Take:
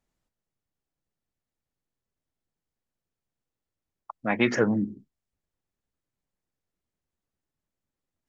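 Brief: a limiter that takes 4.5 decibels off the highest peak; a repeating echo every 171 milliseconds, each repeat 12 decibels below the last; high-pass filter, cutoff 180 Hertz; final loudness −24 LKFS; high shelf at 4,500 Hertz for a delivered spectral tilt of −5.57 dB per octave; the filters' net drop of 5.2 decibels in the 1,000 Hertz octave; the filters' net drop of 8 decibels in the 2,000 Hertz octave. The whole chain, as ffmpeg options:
ffmpeg -i in.wav -af "highpass=180,equalizer=frequency=1000:width_type=o:gain=-5.5,equalizer=frequency=2000:width_type=o:gain=-7.5,highshelf=frequency=4500:gain=-4.5,alimiter=limit=-16.5dB:level=0:latency=1,aecho=1:1:171|342|513:0.251|0.0628|0.0157,volume=6dB" out.wav

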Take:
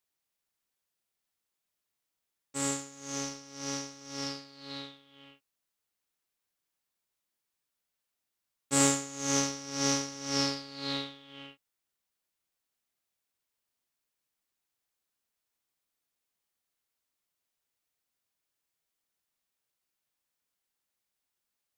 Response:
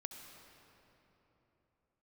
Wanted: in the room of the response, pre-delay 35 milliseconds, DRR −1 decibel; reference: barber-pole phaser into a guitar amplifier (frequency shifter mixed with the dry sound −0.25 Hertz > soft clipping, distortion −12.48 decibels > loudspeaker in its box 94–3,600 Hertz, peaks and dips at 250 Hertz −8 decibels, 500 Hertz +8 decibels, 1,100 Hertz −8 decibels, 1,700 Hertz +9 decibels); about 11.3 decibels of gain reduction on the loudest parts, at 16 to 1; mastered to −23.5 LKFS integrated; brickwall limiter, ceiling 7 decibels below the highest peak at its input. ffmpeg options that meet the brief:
-filter_complex "[0:a]acompressor=threshold=-31dB:ratio=16,alimiter=level_in=2.5dB:limit=-24dB:level=0:latency=1,volume=-2.5dB,asplit=2[link_01][link_02];[1:a]atrim=start_sample=2205,adelay=35[link_03];[link_02][link_03]afir=irnorm=-1:irlink=0,volume=4dB[link_04];[link_01][link_04]amix=inputs=2:normalize=0,asplit=2[link_05][link_06];[link_06]afreqshift=-0.25[link_07];[link_05][link_07]amix=inputs=2:normalize=1,asoftclip=threshold=-35.5dB,highpass=94,equalizer=frequency=250:width_type=q:width=4:gain=-8,equalizer=frequency=500:width_type=q:width=4:gain=8,equalizer=frequency=1100:width_type=q:width=4:gain=-8,equalizer=frequency=1700:width_type=q:width=4:gain=9,lowpass=frequency=3600:width=0.5412,lowpass=frequency=3600:width=1.3066,volume=22dB"

